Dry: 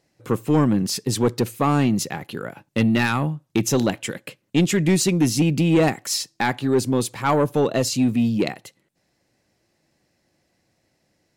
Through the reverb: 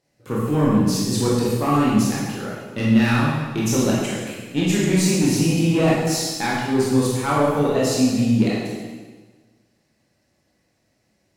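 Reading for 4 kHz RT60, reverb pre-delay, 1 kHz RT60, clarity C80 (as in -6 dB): 1.3 s, 17 ms, 1.3 s, 2.0 dB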